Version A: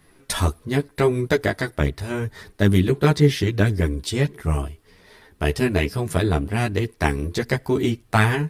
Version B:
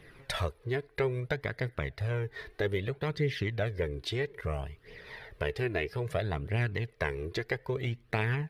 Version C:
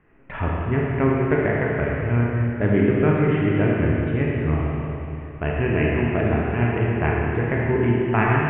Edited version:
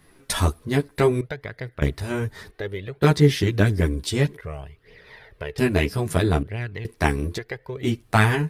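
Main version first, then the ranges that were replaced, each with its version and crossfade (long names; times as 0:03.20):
A
0:01.21–0:01.82: punch in from B
0:02.51–0:03.02: punch in from B
0:04.37–0:05.58: punch in from B
0:06.43–0:06.85: punch in from B
0:07.37–0:07.85: punch in from B, crossfade 0.06 s
not used: C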